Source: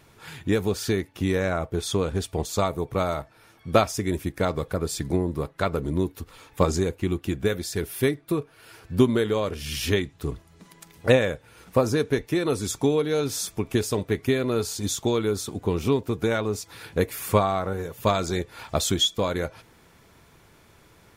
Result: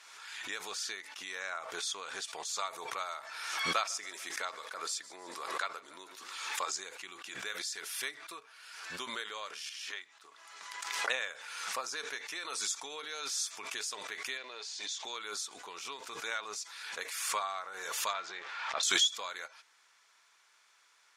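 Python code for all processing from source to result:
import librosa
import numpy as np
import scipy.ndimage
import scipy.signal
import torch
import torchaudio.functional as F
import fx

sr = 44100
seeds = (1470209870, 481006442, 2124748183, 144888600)

y = fx.chain(x, sr, fx.highpass(hz=200.0, slope=12),
    fx.echo_feedback(ms=147, feedback_pct=47, wet_db=-21.0), at=(3.72, 6.73))
y = fx.chain(y, sr, fx.block_float(bits=7),
    fx.highpass(hz=750.0, slope=6),
    fx.high_shelf(hz=2300.0, db=-10.5), at=(9.69, 11.1))
y = fx.chain(y, sr, fx.law_mismatch(coded='mu'),
    fx.bandpass_edges(low_hz=320.0, high_hz=4300.0),
    fx.peak_eq(hz=1300.0, db=-11.0, octaves=0.39), at=(14.37, 15.05))
y = fx.chain(y, sr, fx.zero_step(step_db=-33.0),
    fx.lowpass(hz=2600.0, slope=12), at=(18.13, 18.83))
y = scipy.signal.sosfilt(scipy.signal.cheby1(2, 1.0, [1200.0, 6500.0], 'bandpass', fs=sr, output='sos'), y)
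y = fx.high_shelf(y, sr, hz=5500.0, db=9.0)
y = fx.pre_swell(y, sr, db_per_s=37.0)
y = y * 10.0 ** (-7.5 / 20.0)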